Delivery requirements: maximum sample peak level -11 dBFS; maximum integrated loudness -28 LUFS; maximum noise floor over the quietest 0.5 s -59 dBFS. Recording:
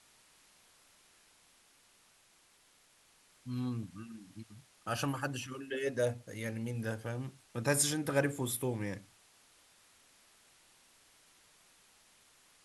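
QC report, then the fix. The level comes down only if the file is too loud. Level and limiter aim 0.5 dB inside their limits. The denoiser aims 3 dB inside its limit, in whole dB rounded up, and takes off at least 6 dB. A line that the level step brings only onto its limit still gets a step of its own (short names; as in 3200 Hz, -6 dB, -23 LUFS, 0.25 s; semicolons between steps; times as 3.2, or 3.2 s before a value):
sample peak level -16.0 dBFS: OK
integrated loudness -36.0 LUFS: OK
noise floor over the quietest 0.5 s -67 dBFS: OK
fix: none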